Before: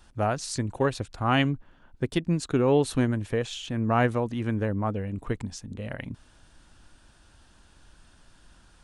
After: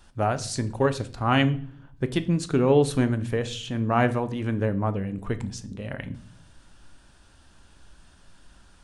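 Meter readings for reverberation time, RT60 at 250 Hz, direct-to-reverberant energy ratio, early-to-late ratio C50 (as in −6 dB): 0.55 s, 0.85 s, 10.0 dB, 17.0 dB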